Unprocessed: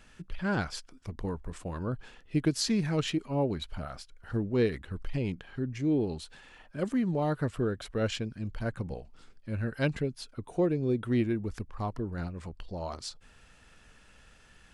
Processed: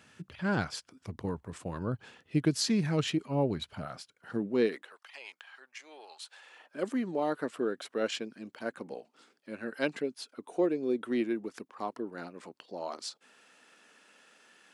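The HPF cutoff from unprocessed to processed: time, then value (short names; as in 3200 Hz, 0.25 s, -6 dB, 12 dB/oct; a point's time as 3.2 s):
HPF 24 dB/oct
3.63 s 92 Hz
4.66 s 210 Hz
5.02 s 810 Hz
6.18 s 810 Hz
6.78 s 250 Hz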